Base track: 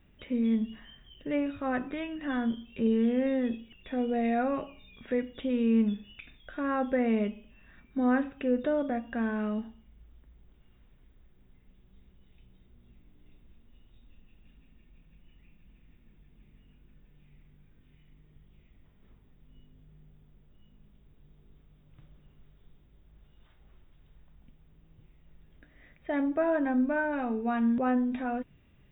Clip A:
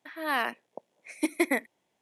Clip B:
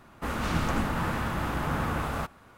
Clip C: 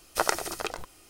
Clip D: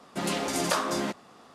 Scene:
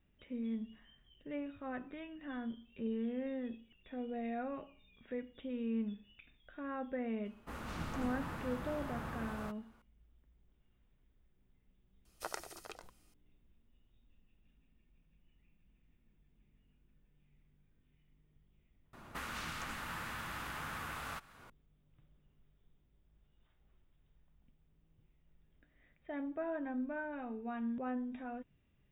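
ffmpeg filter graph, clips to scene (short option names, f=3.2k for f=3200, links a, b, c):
-filter_complex "[2:a]asplit=2[a][b];[0:a]volume=-12dB[c];[b]acrossover=split=1200|6700[d][e][f];[d]acompressor=threshold=-50dB:ratio=4[g];[e]acompressor=threshold=-42dB:ratio=4[h];[f]acompressor=threshold=-56dB:ratio=4[i];[g][h][i]amix=inputs=3:normalize=0[j];[a]atrim=end=2.57,asetpts=PTS-STARTPTS,volume=-14dB,afade=t=in:d=0.004:c=hsin,afade=t=out:st=2.566:d=0.004:c=hsin,adelay=7250[k];[3:a]atrim=end=1.09,asetpts=PTS-STARTPTS,volume=-17dB,afade=t=in:d=0.004:c=hsin,afade=t=out:st=1.086:d=0.004:c=hsin,adelay=12050[l];[j]atrim=end=2.57,asetpts=PTS-STARTPTS,volume=-1dB,afade=t=in:d=0.004:c=hsin,afade=t=out:st=2.566:d=0.004:c=hsin,adelay=18930[m];[c][k][l][m]amix=inputs=4:normalize=0"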